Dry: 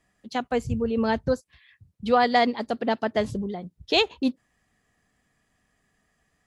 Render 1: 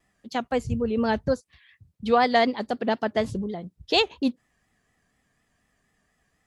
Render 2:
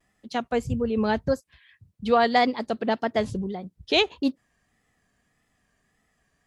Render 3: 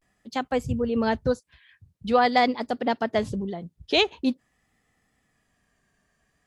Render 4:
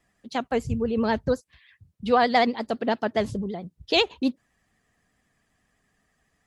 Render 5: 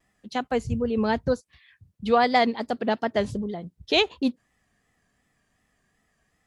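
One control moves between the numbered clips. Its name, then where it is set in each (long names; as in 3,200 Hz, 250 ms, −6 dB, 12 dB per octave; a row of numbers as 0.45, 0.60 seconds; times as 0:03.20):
pitch vibrato, speed: 4.1, 1.7, 0.46, 12, 2.7 Hertz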